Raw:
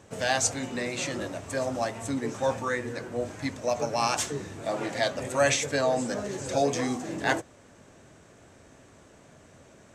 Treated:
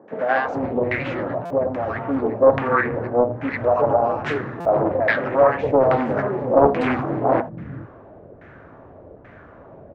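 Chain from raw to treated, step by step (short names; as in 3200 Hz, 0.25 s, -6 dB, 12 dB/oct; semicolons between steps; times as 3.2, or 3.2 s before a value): in parallel at -2 dB: limiter -20 dBFS, peak gain reduction 11 dB; 0.97–1.88 on the sum: compressor 3:1, threshold -26 dBFS, peak gain reduction 5.5 dB; LFO low-pass saw down 1.2 Hz 510–2000 Hz; air absorption 130 m; three bands offset in time mids, highs, lows 80/440 ms, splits 200/880 Hz; stuck buffer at 1.45/4.6, samples 256, times 8; Doppler distortion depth 0.5 ms; gain +5 dB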